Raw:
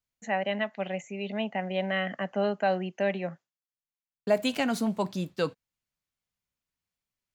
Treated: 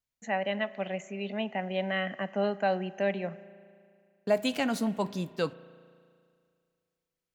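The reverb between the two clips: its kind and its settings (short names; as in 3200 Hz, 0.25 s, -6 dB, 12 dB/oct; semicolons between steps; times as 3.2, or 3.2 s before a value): spring tank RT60 2.2 s, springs 35 ms, chirp 70 ms, DRR 17 dB; gain -1.5 dB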